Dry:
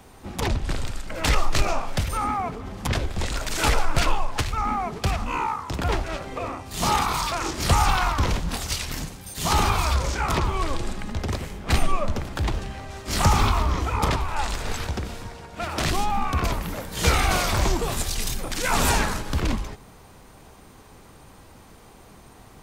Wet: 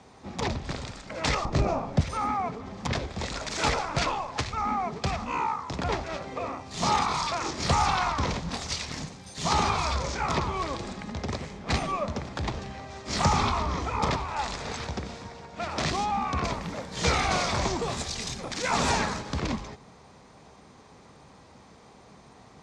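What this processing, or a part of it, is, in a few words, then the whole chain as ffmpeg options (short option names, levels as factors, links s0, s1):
car door speaker: -filter_complex "[0:a]asettb=1/sr,asplit=3[s0][s1][s2];[s0]atrim=end=1.454[s3];[s1]atrim=start=1.45:end=2.01,asetpts=PTS-STARTPTS,afade=t=in:d=0.004:c=qsin,afade=t=out:st=0.556:d=0.004:c=qsin,tiltshelf=f=810:g=9[s4];[s2]atrim=start=2.006[s5];[s3][s4]acrossfade=d=0.004:c1=hsin:c2=qsin[s6];[s6][s5]acrossfade=d=0.004:c1=qsin:c2=hsin,highpass=88,equalizer=f=99:t=q:w=4:g=-5,equalizer=f=330:t=q:w=4:g=-4,equalizer=f=1500:t=q:w=4:g=-4,equalizer=f=2900:t=q:w=4:g=-5,lowpass=f=6800:w=0.5412,lowpass=f=6800:w=1.3066,volume=0.841"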